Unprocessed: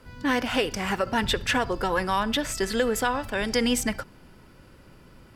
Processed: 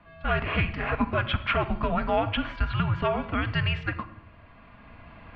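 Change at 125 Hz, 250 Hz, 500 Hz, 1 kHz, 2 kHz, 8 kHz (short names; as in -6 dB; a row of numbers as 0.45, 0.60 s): +9.0 dB, -3.5 dB, -3.0 dB, -1.5 dB, -1.5 dB, under -35 dB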